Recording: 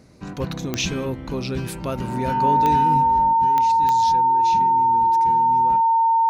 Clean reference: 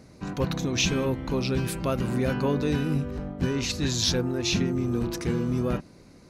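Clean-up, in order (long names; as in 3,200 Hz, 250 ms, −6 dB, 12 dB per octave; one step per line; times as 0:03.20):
click removal
notch filter 910 Hz, Q 30
level correction +9.5 dB, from 0:03.33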